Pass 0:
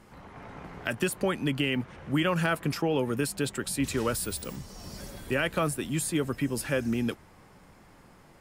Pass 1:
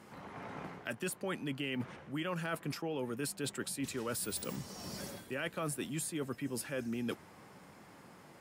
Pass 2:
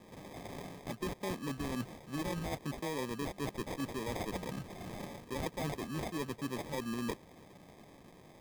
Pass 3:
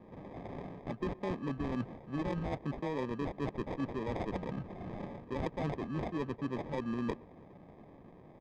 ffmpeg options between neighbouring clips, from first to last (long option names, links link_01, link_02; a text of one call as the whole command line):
ffmpeg -i in.wav -af "highpass=130,areverse,acompressor=threshold=-35dB:ratio=6,areverse" out.wav
ffmpeg -i in.wav -af "acrusher=samples=31:mix=1:aa=0.000001" out.wav
ffmpeg -i in.wav -filter_complex "[0:a]asplit=2[link_01][link_02];[link_02]adelay=122.4,volume=-23dB,highshelf=frequency=4000:gain=-2.76[link_03];[link_01][link_03]amix=inputs=2:normalize=0,adynamicsmooth=sensitivity=2:basefreq=1500,volume=2.5dB" out.wav